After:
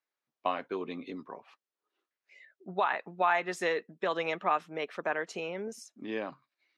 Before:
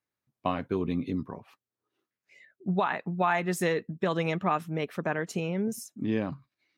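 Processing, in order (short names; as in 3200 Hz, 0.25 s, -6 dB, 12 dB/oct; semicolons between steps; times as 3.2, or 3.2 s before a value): BPF 460–5500 Hz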